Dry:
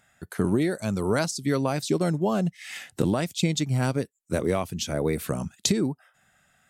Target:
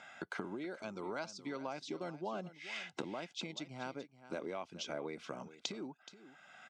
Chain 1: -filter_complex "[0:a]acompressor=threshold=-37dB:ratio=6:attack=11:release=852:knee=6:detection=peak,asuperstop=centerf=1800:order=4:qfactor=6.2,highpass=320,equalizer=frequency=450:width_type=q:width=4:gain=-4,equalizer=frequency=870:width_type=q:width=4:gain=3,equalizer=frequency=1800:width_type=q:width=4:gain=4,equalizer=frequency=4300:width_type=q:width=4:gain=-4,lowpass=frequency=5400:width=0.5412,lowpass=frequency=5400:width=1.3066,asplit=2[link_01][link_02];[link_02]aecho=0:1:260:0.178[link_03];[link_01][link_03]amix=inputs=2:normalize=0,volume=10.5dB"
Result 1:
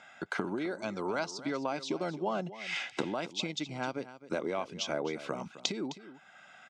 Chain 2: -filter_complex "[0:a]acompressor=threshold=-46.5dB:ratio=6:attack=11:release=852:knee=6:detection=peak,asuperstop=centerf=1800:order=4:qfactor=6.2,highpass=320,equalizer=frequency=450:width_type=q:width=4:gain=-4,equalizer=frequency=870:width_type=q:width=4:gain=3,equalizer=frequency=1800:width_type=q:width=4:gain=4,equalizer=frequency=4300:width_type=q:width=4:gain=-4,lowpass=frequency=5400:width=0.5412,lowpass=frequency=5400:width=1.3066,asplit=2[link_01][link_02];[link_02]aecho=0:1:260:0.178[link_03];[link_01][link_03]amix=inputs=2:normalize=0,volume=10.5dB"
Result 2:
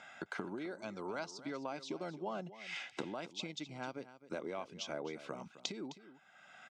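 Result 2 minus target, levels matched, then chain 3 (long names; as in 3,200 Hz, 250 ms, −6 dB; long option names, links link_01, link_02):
echo 165 ms early
-filter_complex "[0:a]acompressor=threshold=-46.5dB:ratio=6:attack=11:release=852:knee=6:detection=peak,asuperstop=centerf=1800:order=4:qfactor=6.2,highpass=320,equalizer=frequency=450:width_type=q:width=4:gain=-4,equalizer=frequency=870:width_type=q:width=4:gain=3,equalizer=frequency=1800:width_type=q:width=4:gain=4,equalizer=frequency=4300:width_type=q:width=4:gain=-4,lowpass=frequency=5400:width=0.5412,lowpass=frequency=5400:width=1.3066,asplit=2[link_01][link_02];[link_02]aecho=0:1:425:0.178[link_03];[link_01][link_03]amix=inputs=2:normalize=0,volume=10.5dB"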